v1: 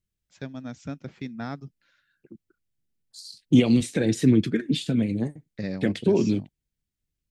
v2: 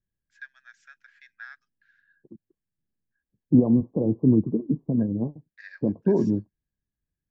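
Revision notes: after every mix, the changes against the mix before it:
first voice: add ladder high-pass 1.6 kHz, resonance 90%; second voice: add Chebyshev low-pass 1.1 kHz, order 8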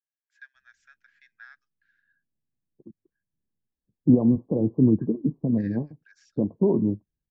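first voice -5.5 dB; second voice: entry +0.55 s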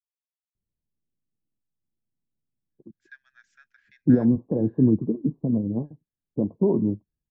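first voice: entry +2.70 s

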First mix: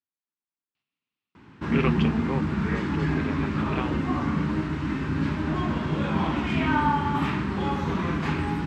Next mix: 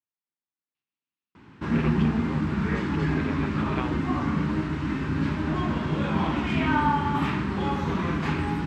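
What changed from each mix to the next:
first voice -8.0 dB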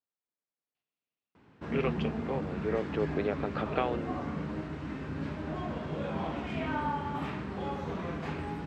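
background -10.5 dB; master: add high-order bell 570 Hz +8.5 dB 1 oct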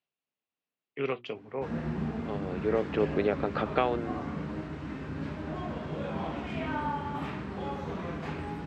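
first voice: entry -0.75 s; second voice +4.0 dB

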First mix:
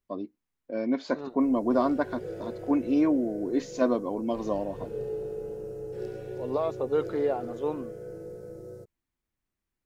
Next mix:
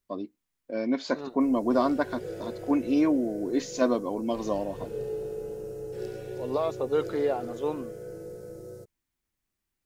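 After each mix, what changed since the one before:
master: add treble shelf 2.6 kHz +8 dB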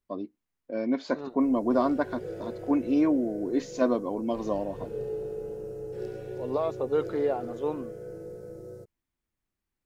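master: add treble shelf 2.6 kHz -8 dB

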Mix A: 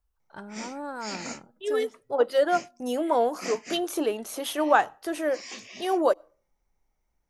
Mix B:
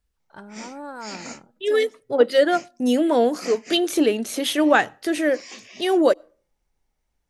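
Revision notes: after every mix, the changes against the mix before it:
second voice: add ten-band graphic EQ 125 Hz +10 dB, 250 Hz +10 dB, 500 Hz +4 dB, 1 kHz -5 dB, 2 kHz +10 dB, 4 kHz +7 dB, 8 kHz +6 dB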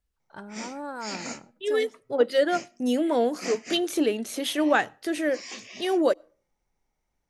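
second voice -5.0 dB; background: send on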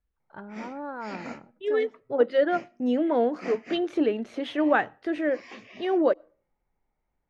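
master: add low-pass 2.1 kHz 12 dB/octave

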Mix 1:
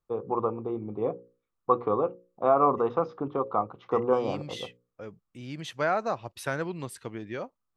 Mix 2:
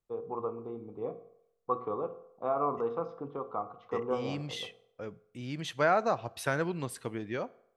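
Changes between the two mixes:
first voice -10.5 dB; reverb: on, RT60 0.75 s

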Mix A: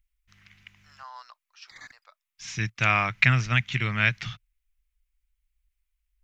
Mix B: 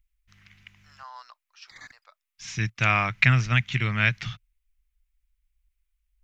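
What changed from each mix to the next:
master: add bass shelf 220 Hz +3 dB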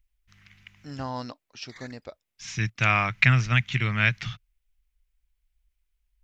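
first voice: remove ladder high-pass 990 Hz, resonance 50%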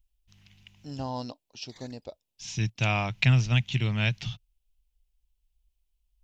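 master: add high-order bell 1.6 kHz -12 dB 1.2 oct

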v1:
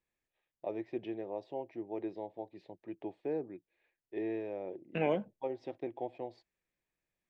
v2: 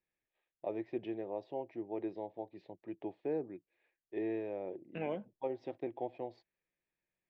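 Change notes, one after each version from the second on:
second voice -7.0 dB; master: add distance through air 80 m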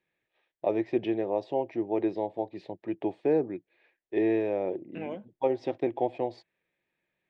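first voice +11.0 dB; master: remove distance through air 80 m

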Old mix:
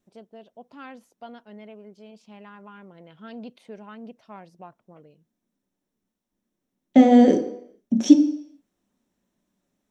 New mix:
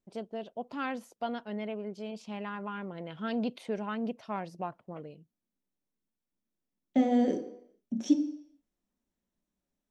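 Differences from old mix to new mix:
first voice +7.0 dB; second voice -12.0 dB

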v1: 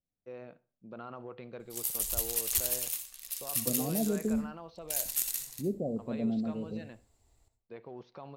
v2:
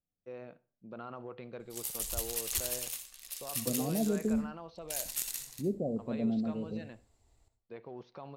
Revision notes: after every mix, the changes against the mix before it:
background: add treble shelf 11 kHz -9.5 dB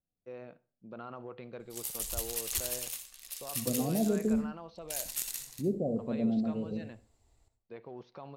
second voice: send +9.5 dB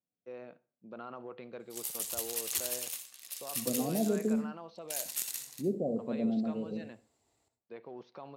master: add high-pass 180 Hz 12 dB/octave

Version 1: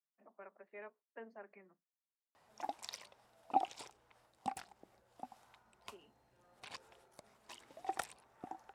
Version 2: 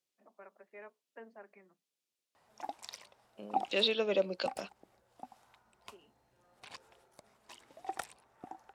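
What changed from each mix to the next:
second voice: unmuted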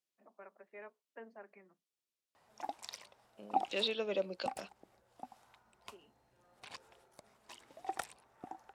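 second voice -5.0 dB

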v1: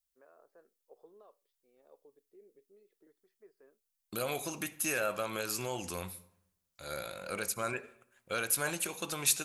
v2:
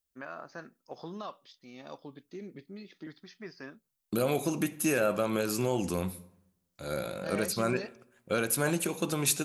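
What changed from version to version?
first voice: remove band-pass filter 440 Hz, Q 5; master: add peaking EQ 220 Hz +13 dB 2.8 oct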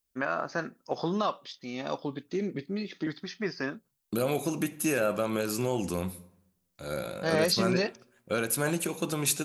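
first voice +12.0 dB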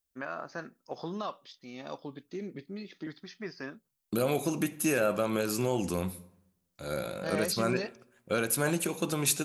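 first voice -7.5 dB

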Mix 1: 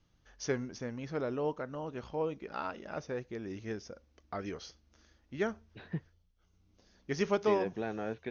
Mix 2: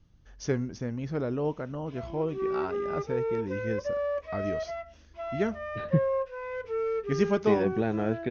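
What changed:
second voice +4.0 dB; background: unmuted; master: add bass shelf 290 Hz +11.5 dB

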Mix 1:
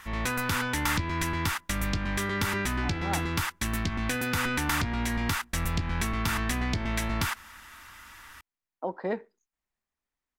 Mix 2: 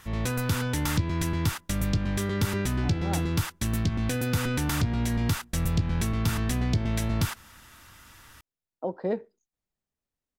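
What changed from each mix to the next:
master: add ten-band graphic EQ 125 Hz +9 dB, 500 Hz +4 dB, 1 kHz -5 dB, 2 kHz -6 dB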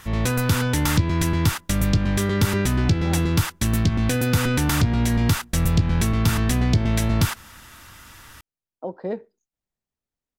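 background +6.5 dB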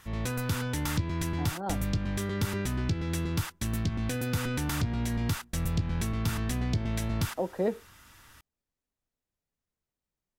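speech: entry -1.45 s; background -10.0 dB

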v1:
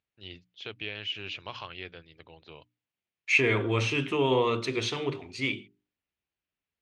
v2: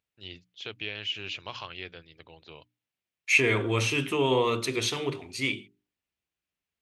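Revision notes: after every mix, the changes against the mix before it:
master: remove distance through air 100 m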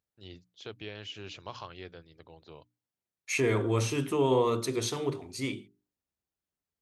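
master: add peaking EQ 2.6 kHz -12 dB 1.2 oct

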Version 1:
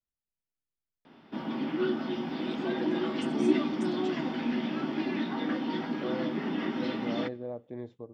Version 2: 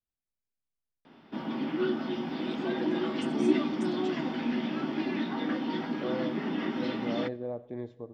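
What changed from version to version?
second voice: send on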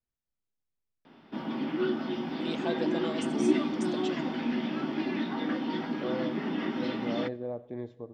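first voice +7.5 dB

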